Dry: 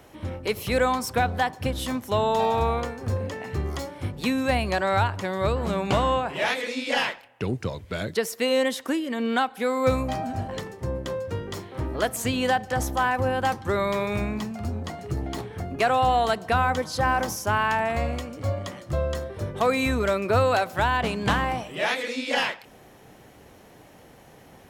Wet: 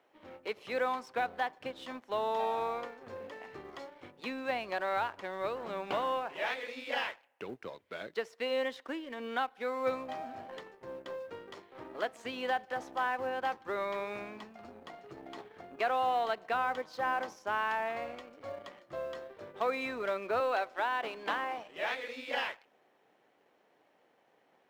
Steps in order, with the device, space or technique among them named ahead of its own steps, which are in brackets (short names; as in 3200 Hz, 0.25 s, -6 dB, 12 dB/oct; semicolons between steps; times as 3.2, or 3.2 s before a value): 20.4–21.58 HPF 230 Hz 24 dB/oct; phone line with mismatched companding (BPF 370–3400 Hz; G.711 law mismatch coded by A); gain -8 dB